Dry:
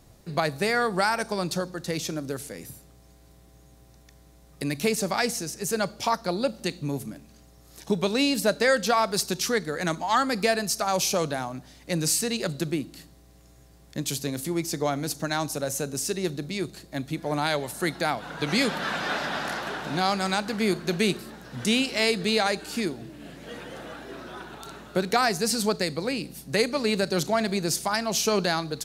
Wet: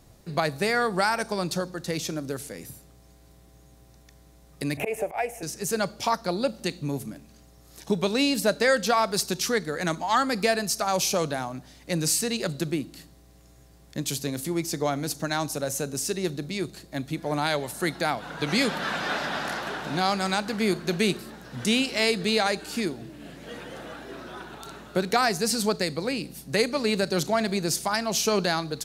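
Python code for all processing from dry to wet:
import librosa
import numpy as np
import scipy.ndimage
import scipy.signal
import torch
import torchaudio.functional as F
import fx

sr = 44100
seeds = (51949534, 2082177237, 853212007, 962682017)

y = fx.chain(x, sr, fx.curve_eq(hz=(110.0, 190.0, 390.0, 720.0, 1200.0, 2500.0, 4300.0, 6700.0, 11000.0), db=(0, -21, -4, 6, -11, 0, -29, -16, -8)),
    fx.auto_swell(attack_ms=120.0),
    fx.band_squash(depth_pct=100), at=(4.77, 5.43))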